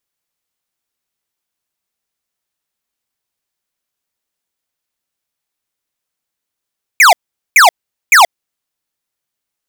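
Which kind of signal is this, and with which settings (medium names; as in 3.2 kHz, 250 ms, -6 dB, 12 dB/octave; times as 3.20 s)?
burst of laser zaps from 2.5 kHz, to 640 Hz, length 0.13 s square, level -5 dB, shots 3, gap 0.43 s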